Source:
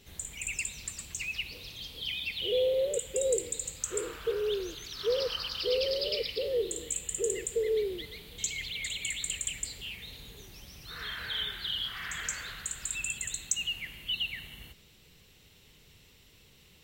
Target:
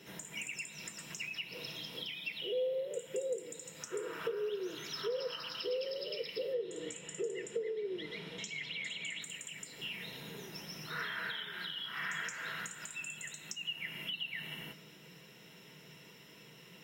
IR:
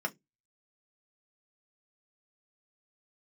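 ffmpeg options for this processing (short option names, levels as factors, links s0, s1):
-filter_complex "[0:a]asettb=1/sr,asplit=3[s0][s1][s2];[s0]atrim=end=6.534[s3];[s1]atrim=start=6.53:end=9.22,asetpts=PTS-STARTPTS,afade=t=in:d=0.004:c=qsin,afade=t=out:st=2.686:d=0.004:c=qsin,lowpass=6400[s4];[s2]atrim=start=9.216[s5];[s3][s4]acrossfade=d=0.004:c1=hsin:c2=qsin[s6];[s6][s5]acrossfade=d=0.004:c1=qsin:c2=hsin,acompressor=threshold=0.00891:ratio=12[s7];[1:a]atrim=start_sample=2205[s8];[s7][s8]afir=irnorm=-1:irlink=0,volume=1.26"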